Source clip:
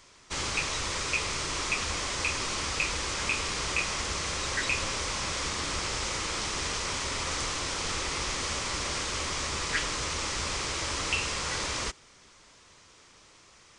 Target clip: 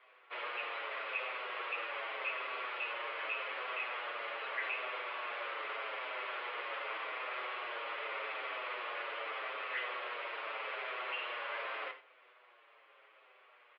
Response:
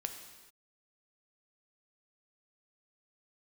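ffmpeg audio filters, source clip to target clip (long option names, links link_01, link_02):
-filter_complex "[0:a]aresample=11025,asoftclip=type=tanh:threshold=-28dB,aresample=44100[link_01];[1:a]atrim=start_sample=2205,atrim=end_sample=4410[link_02];[link_01][link_02]afir=irnorm=-1:irlink=0,highpass=frequency=360:width_type=q:width=0.5412,highpass=frequency=360:width_type=q:width=1.307,lowpass=frequency=2800:width_type=q:width=0.5176,lowpass=frequency=2800:width_type=q:width=0.7071,lowpass=frequency=2800:width_type=q:width=1.932,afreqshift=78,asplit=2[link_03][link_04];[link_04]adelay=7.4,afreqshift=-0.83[link_05];[link_03][link_05]amix=inputs=2:normalize=1,volume=1dB"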